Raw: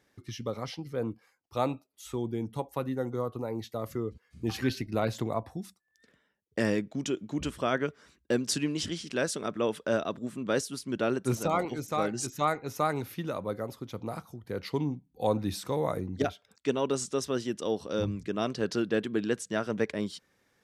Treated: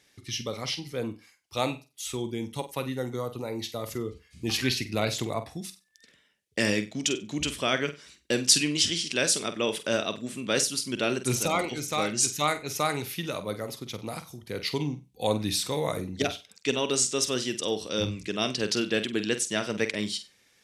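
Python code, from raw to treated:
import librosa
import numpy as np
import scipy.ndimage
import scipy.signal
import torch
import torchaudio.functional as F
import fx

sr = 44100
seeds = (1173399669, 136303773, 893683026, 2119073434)

p1 = fx.band_shelf(x, sr, hz=4900.0, db=11.5, octaves=2.8)
y = p1 + fx.room_flutter(p1, sr, wall_m=8.1, rt60_s=0.26, dry=0)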